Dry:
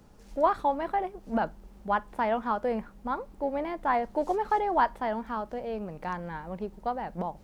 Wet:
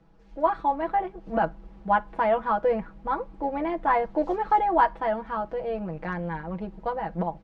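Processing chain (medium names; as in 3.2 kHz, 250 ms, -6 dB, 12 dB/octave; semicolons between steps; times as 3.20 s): low-pass 3.1 kHz 12 dB/octave; comb 6.1 ms, depth 84%; level rider gain up to 7.5 dB; trim -5.5 dB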